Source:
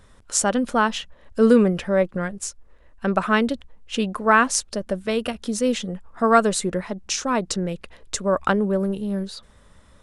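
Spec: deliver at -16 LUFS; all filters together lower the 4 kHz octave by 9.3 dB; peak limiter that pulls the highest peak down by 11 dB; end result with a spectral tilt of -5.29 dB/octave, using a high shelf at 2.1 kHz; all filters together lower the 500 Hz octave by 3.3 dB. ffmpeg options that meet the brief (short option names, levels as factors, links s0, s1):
-af "equalizer=f=500:t=o:g=-3.5,highshelf=f=2100:g=-5,equalizer=f=4000:t=o:g=-8,volume=4.22,alimiter=limit=0.596:level=0:latency=1"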